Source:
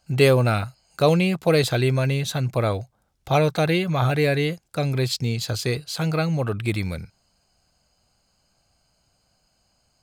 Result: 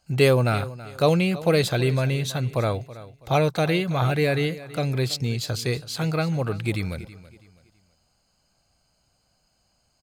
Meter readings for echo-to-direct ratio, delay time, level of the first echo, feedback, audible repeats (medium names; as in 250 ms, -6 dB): -16.5 dB, 327 ms, -17.0 dB, 32%, 2